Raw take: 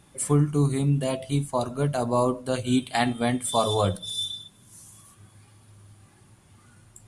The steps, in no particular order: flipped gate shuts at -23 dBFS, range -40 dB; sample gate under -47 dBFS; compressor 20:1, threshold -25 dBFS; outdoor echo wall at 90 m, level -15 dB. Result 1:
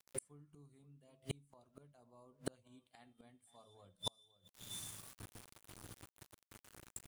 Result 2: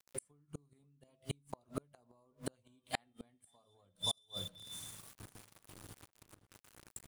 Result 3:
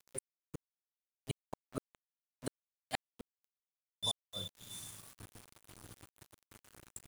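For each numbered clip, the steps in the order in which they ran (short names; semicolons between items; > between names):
outdoor echo > sample gate > flipped gate > compressor; sample gate > compressor > outdoor echo > flipped gate; compressor > outdoor echo > flipped gate > sample gate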